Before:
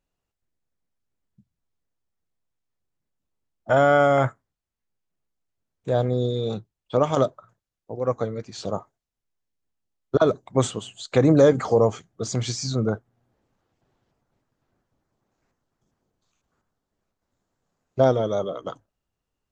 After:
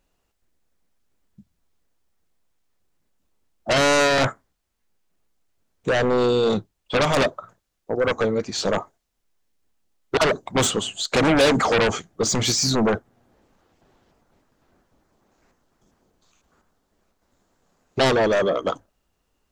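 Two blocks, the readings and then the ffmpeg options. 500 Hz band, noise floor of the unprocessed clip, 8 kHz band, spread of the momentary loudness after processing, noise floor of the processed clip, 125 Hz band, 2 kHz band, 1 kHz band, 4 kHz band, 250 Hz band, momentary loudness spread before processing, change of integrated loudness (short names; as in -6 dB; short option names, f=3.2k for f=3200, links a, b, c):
+0.5 dB, -85 dBFS, +10.0 dB, 11 LU, -74 dBFS, -3.0 dB, +8.5 dB, +2.0 dB, +11.5 dB, +1.5 dB, 17 LU, +1.5 dB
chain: -filter_complex "[0:a]equalizer=f=120:t=o:w=0.57:g=-9,asplit=2[a][b];[b]aeval=exprs='0.531*sin(PI/2*7.94*val(0)/0.531)':c=same,volume=-9dB[c];[a][c]amix=inputs=2:normalize=0,volume=-3.5dB"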